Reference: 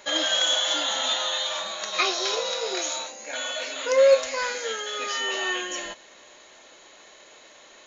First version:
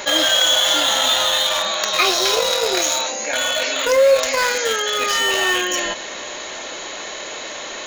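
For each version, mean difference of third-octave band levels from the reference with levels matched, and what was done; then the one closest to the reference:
7.5 dB: in parallel at −10 dB: bit reduction 4 bits
on the sum: envelope flattener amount 50%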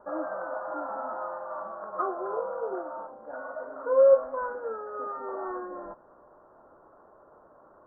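10.5 dB: background noise white −53 dBFS
Butterworth low-pass 1,400 Hz 72 dB per octave
level −1.5 dB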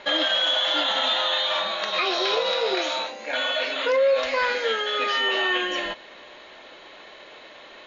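4.0 dB: low-pass filter 4,000 Hz 24 dB per octave
brickwall limiter −20.5 dBFS, peak gain reduction 11.5 dB
level +6.5 dB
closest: third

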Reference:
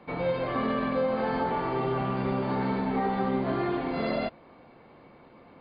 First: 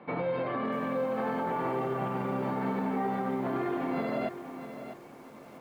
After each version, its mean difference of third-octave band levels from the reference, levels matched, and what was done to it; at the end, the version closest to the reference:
5.5 dB: brickwall limiter −25.5 dBFS, peak gain reduction 9 dB
band-pass filter 130–2,600 Hz
feedback echo at a low word length 647 ms, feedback 35%, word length 9 bits, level −10.5 dB
level +2 dB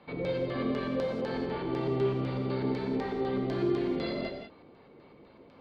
3.5 dB: dynamic equaliser 930 Hz, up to −6 dB, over −44 dBFS, Q 1.1
auto-filter low-pass square 4 Hz 410–4,400 Hz
reverb whose tail is shaped and stops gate 220 ms flat, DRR 1 dB
level −5.5 dB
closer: second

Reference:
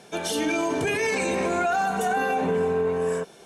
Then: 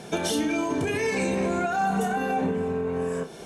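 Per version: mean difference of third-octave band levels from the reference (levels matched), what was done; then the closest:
3.0 dB: low-shelf EQ 320 Hz +9 dB
downward compressor 12 to 1, threshold −28 dBFS, peak gain reduction 12 dB
flutter between parallel walls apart 5.3 metres, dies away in 0.21 s
level +5 dB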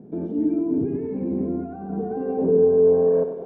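15.0 dB: brickwall limiter −23.5 dBFS, peak gain reduction 9 dB
low-pass filter sweep 270 Hz → 550 Hz, 0:01.68–0:03.14
on a send: bucket-brigade delay 96 ms, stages 4,096, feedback 51%, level −9 dB
on the sum: level +7 dB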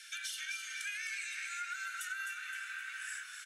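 22.0 dB: Butterworth high-pass 1,400 Hz 96 dB per octave
downward compressor 5 to 1, threshold −43 dBFS, peak gain reduction 15.5 dB
echo with shifted repeats 259 ms, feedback 51%, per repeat −50 Hz, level −7.5 dB
level +2.5 dB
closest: first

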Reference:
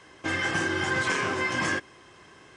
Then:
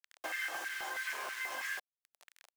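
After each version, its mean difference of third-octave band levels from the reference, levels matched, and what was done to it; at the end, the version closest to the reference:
13.0 dB: downward compressor 16 to 1, threshold −35 dBFS, peak gain reduction 13.5 dB
bit reduction 7 bits
auto-filter high-pass square 3.1 Hz 680–1,800 Hz
level −3.5 dB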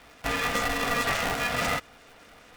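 6.0 dB: low-shelf EQ 85 Hz +9.5 dB
auto-filter notch square 4.8 Hz 430–6,700 Hz
ring modulator with a square carrier 370 Hz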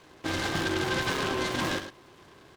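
4.0 dB: high-shelf EQ 2,500 Hz −11 dB
single-tap delay 105 ms −10.5 dB
short delay modulated by noise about 1,700 Hz, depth 0.087 ms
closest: third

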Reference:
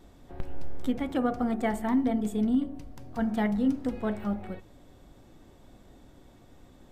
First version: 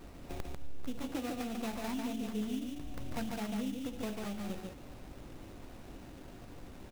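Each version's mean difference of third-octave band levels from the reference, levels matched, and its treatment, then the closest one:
12.0 dB: high-shelf EQ 6,300 Hz +7.5 dB
downward compressor 10 to 1, threshold −39 dBFS, peak gain reduction 18 dB
sample-rate reduction 3,200 Hz, jitter 20%
single-tap delay 145 ms −3.5 dB
level +3 dB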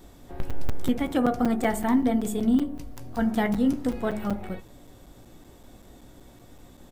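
3.0 dB: high-shelf EQ 7,100 Hz +10 dB
double-tracking delay 17 ms −13 dB
hum removal 71.1 Hz, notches 3
regular buffer underruns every 0.19 s, samples 256, zero, from 0:00.50
level +4 dB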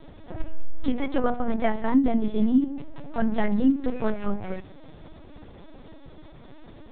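5.0 dB: mains-hum notches 60/120/180/240 Hz
in parallel at −3 dB: downward compressor, threshold −36 dBFS, peak gain reduction 15 dB
on the sum: linear-prediction vocoder at 8 kHz pitch kept
level +4.5 dB
Ogg Vorbis 64 kbit/s 22,050 Hz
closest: second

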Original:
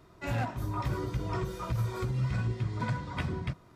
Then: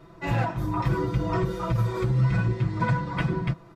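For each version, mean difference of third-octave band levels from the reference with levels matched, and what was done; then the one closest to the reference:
3.0 dB: high-shelf EQ 3,800 Hz −9.5 dB
comb filter 6 ms, depth 79%
level +6 dB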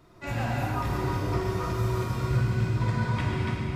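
5.0 dB: on a send: echo machine with several playback heads 130 ms, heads first and third, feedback 63%, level −11 dB
on the sum: reverb whose tail is shaped and stops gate 370 ms flat, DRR −3.5 dB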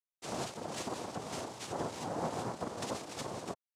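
10.0 dB: bit reduction 7 bits
cochlear-implant simulation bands 2
level −6.5 dB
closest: first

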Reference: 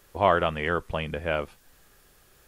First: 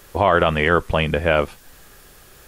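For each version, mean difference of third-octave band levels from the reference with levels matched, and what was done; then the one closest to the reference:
2.5 dB: boost into a limiter +15 dB
level −3.5 dB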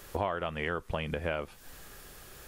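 4.0 dB: downward compressor 6 to 1, threshold −39 dBFS, peak gain reduction 22 dB
level +8.5 dB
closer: first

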